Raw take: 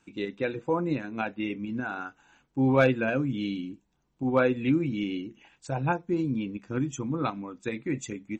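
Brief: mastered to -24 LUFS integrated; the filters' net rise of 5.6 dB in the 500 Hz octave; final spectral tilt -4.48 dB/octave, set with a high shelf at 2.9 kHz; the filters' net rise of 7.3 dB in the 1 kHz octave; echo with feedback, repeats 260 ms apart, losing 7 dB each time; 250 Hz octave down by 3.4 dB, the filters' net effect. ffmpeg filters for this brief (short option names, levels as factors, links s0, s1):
-af "equalizer=f=250:t=o:g=-7,equalizer=f=500:t=o:g=6,equalizer=f=1000:t=o:g=7,highshelf=f=2900:g=8,aecho=1:1:260|520|780|1040|1300:0.447|0.201|0.0905|0.0407|0.0183,volume=1.12"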